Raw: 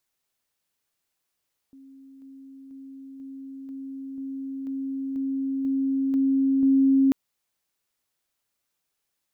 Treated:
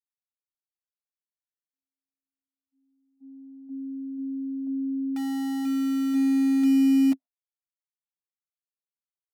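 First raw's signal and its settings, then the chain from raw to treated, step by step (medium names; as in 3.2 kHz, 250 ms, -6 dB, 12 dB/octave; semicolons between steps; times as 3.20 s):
level ladder 270 Hz -45.5 dBFS, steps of 3 dB, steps 11, 0.49 s 0.00 s
gate -39 dBFS, range -58 dB; two resonant band-passes 420 Hz, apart 1.3 oct; in parallel at -11 dB: integer overflow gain 27 dB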